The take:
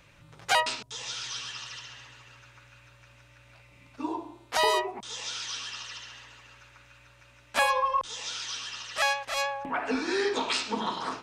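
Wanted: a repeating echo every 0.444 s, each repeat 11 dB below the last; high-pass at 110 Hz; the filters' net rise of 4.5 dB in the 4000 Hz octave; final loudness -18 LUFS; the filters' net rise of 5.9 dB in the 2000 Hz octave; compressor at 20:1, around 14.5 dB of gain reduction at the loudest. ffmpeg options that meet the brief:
-af "highpass=110,equalizer=f=2k:t=o:g=6.5,equalizer=f=4k:t=o:g=3.5,acompressor=threshold=-30dB:ratio=20,aecho=1:1:444|888|1332:0.282|0.0789|0.0221,volume=16dB"

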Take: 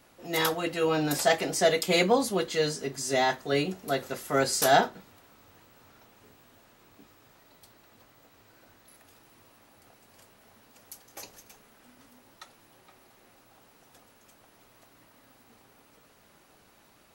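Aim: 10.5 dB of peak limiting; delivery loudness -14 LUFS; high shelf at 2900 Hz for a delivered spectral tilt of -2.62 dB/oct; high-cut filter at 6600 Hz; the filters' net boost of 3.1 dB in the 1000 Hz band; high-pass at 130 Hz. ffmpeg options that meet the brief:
-af "highpass=130,lowpass=6.6k,equalizer=f=1k:t=o:g=4,highshelf=f=2.9k:g=7,volume=13.5dB,alimiter=limit=-3dB:level=0:latency=1"

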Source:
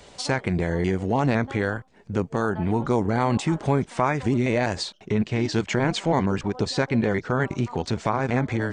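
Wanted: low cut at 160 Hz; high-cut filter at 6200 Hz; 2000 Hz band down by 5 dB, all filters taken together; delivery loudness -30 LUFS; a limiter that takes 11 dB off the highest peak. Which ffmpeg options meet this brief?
-af "highpass=160,lowpass=6.2k,equalizer=f=2k:t=o:g=-6.5,volume=0.5dB,alimiter=limit=-18.5dB:level=0:latency=1"

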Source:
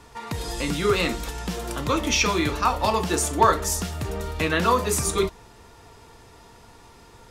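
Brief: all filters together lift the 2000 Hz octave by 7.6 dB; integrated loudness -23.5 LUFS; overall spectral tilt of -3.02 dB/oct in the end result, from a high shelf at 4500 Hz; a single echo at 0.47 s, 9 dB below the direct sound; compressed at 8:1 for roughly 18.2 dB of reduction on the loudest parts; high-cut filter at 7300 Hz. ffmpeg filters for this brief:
-af "lowpass=7.3k,equalizer=f=2k:t=o:g=8,highshelf=f=4.5k:g=8,acompressor=threshold=-30dB:ratio=8,aecho=1:1:470:0.355,volume=9dB"

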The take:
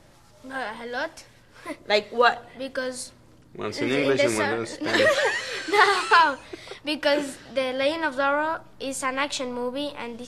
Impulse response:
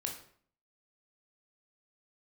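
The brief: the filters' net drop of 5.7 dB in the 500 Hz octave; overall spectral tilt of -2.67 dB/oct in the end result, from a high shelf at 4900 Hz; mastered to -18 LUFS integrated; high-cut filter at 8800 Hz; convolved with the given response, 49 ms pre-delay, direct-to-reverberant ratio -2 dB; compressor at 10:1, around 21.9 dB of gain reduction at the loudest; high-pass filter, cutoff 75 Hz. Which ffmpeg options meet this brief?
-filter_complex "[0:a]highpass=75,lowpass=8.8k,equalizer=f=500:t=o:g=-7,highshelf=f=4.9k:g=5.5,acompressor=threshold=-35dB:ratio=10,asplit=2[a][b];[1:a]atrim=start_sample=2205,adelay=49[c];[b][c]afir=irnorm=-1:irlink=0,volume=1.5dB[d];[a][d]amix=inputs=2:normalize=0,volume=16.5dB"

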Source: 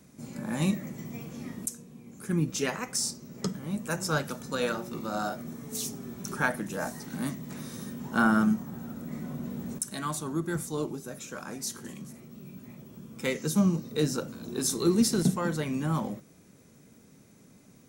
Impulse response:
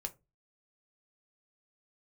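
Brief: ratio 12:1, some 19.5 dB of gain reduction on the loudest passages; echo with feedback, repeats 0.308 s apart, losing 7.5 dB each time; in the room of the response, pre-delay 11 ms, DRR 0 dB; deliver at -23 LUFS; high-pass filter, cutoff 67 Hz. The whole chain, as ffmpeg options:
-filter_complex "[0:a]highpass=67,acompressor=threshold=-39dB:ratio=12,aecho=1:1:308|616|924|1232|1540:0.422|0.177|0.0744|0.0312|0.0131,asplit=2[a][b];[1:a]atrim=start_sample=2205,adelay=11[c];[b][c]afir=irnorm=-1:irlink=0,volume=1.5dB[d];[a][d]amix=inputs=2:normalize=0,volume=17dB"

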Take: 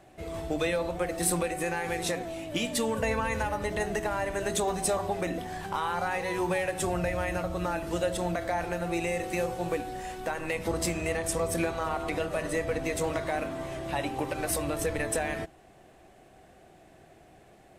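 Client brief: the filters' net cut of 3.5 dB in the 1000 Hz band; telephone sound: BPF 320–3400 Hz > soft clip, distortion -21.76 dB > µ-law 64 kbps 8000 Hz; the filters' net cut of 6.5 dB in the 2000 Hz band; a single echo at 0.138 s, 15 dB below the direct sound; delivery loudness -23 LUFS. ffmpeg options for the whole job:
-af "highpass=320,lowpass=3.4k,equalizer=f=1k:t=o:g=-3.5,equalizer=f=2k:t=o:g=-6.5,aecho=1:1:138:0.178,asoftclip=threshold=-23.5dB,volume=12.5dB" -ar 8000 -c:a pcm_mulaw

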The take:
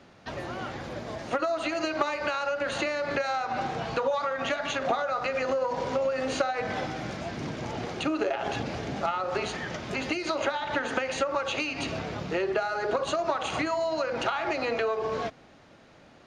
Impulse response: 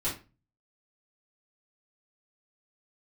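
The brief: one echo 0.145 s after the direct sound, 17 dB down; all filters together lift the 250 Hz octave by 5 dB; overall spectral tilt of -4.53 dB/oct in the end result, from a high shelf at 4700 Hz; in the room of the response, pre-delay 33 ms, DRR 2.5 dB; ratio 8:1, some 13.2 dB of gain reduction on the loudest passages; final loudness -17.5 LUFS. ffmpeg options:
-filter_complex "[0:a]equalizer=f=250:t=o:g=6.5,highshelf=f=4.7k:g=-5,acompressor=threshold=-35dB:ratio=8,aecho=1:1:145:0.141,asplit=2[a][b];[1:a]atrim=start_sample=2205,adelay=33[c];[b][c]afir=irnorm=-1:irlink=0,volume=-8.5dB[d];[a][d]amix=inputs=2:normalize=0,volume=18.5dB"

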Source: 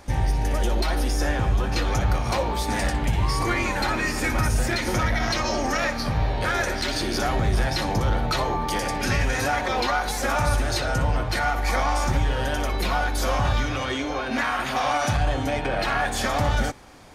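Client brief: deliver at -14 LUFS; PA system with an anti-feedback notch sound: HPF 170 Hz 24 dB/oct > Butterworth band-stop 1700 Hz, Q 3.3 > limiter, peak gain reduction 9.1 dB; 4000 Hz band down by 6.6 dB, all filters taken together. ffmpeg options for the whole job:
-af "highpass=f=170:w=0.5412,highpass=f=170:w=1.3066,asuperstop=centerf=1700:order=8:qfactor=3.3,equalizer=f=4k:t=o:g=-8.5,volume=17dB,alimiter=limit=-5.5dB:level=0:latency=1"

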